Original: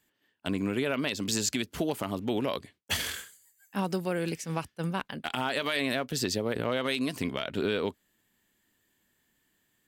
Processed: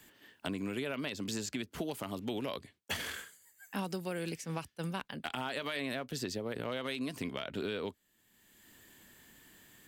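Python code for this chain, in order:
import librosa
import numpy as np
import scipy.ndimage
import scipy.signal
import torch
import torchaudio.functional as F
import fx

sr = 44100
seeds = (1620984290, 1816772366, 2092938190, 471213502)

y = fx.band_squash(x, sr, depth_pct=70)
y = F.gain(torch.from_numpy(y), -7.5).numpy()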